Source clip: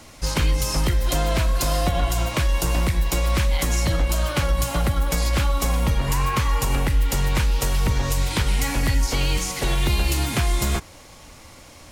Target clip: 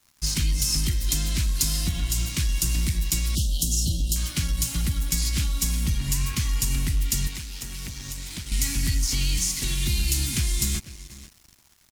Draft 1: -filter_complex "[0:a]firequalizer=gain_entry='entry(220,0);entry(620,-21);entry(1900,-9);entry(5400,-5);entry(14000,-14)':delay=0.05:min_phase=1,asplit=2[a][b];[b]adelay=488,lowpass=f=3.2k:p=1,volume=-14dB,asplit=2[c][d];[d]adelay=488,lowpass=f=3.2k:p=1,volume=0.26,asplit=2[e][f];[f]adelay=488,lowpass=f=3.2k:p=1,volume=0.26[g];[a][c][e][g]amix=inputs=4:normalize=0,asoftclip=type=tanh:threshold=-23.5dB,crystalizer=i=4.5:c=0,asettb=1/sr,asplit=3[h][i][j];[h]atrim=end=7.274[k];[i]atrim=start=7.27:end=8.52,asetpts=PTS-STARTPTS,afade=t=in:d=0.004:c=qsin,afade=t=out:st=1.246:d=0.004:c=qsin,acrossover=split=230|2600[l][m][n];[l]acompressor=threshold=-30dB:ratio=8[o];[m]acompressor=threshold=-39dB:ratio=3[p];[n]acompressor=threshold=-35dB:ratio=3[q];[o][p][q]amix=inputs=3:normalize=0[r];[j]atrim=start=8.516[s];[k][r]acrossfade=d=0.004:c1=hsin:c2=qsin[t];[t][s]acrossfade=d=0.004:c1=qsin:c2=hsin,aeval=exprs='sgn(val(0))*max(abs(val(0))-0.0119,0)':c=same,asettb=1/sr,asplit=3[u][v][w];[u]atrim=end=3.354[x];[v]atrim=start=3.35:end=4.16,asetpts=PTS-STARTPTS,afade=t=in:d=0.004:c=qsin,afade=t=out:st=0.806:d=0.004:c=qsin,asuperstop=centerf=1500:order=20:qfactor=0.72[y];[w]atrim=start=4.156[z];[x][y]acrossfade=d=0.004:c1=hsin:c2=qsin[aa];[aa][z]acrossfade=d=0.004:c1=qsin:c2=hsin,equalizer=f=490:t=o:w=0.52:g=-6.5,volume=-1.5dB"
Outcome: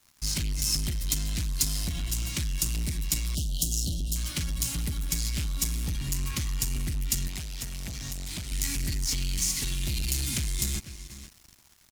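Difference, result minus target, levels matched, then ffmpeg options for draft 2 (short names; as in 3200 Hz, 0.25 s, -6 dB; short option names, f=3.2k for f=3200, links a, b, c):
soft clip: distortion +14 dB
-filter_complex "[0:a]firequalizer=gain_entry='entry(220,0);entry(620,-21);entry(1900,-9);entry(5400,-5);entry(14000,-14)':delay=0.05:min_phase=1,asplit=2[a][b];[b]adelay=488,lowpass=f=3.2k:p=1,volume=-14dB,asplit=2[c][d];[d]adelay=488,lowpass=f=3.2k:p=1,volume=0.26,asplit=2[e][f];[f]adelay=488,lowpass=f=3.2k:p=1,volume=0.26[g];[a][c][e][g]amix=inputs=4:normalize=0,asoftclip=type=tanh:threshold=-12.5dB,crystalizer=i=4.5:c=0,asettb=1/sr,asplit=3[h][i][j];[h]atrim=end=7.274[k];[i]atrim=start=7.27:end=8.52,asetpts=PTS-STARTPTS,afade=t=in:d=0.004:c=qsin,afade=t=out:st=1.246:d=0.004:c=qsin,acrossover=split=230|2600[l][m][n];[l]acompressor=threshold=-30dB:ratio=8[o];[m]acompressor=threshold=-39dB:ratio=3[p];[n]acompressor=threshold=-35dB:ratio=3[q];[o][p][q]amix=inputs=3:normalize=0[r];[j]atrim=start=8.516[s];[k][r]acrossfade=d=0.004:c1=hsin:c2=qsin[t];[t][s]acrossfade=d=0.004:c1=qsin:c2=hsin,aeval=exprs='sgn(val(0))*max(abs(val(0))-0.0119,0)':c=same,asettb=1/sr,asplit=3[u][v][w];[u]atrim=end=3.354[x];[v]atrim=start=3.35:end=4.16,asetpts=PTS-STARTPTS,afade=t=in:d=0.004:c=qsin,afade=t=out:st=0.806:d=0.004:c=qsin,asuperstop=centerf=1500:order=20:qfactor=0.72[y];[w]atrim=start=4.156[z];[x][y]acrossfade=d=0.004:c1=hsin:c2=qsin[aa];[aa][z]acrossfade=d=0.004:c1=qsin:c2=hsin,equalizer=f=490:t=o:w=0.52:g=-6.5,volume=-1.5dB"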